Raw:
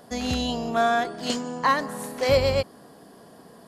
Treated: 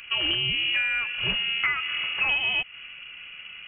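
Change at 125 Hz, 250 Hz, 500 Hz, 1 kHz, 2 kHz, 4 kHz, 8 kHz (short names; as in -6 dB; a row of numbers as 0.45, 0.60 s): -9.5 dB, -15.5 dB, -21.0 dB, -13.0 dB, +7.0 dB, +8.5 dB, under -35 dB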